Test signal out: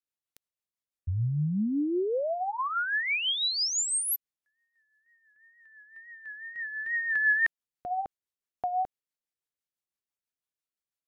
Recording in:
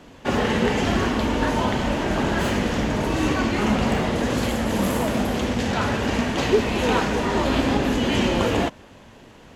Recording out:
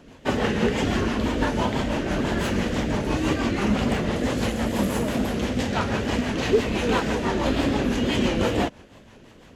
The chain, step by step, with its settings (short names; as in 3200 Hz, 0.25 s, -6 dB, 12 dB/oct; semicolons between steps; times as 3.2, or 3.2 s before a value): rotary speaker horn 6 Hz; wow and flutter 76 cents